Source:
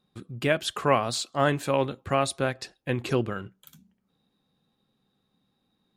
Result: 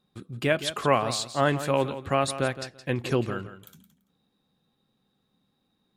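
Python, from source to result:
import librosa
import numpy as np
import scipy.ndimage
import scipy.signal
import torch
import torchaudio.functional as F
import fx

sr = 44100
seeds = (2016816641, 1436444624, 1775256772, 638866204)

y = fx.echo_feedback(x, sr, ms=168, feedback_pct=17, wet_db=-12.5)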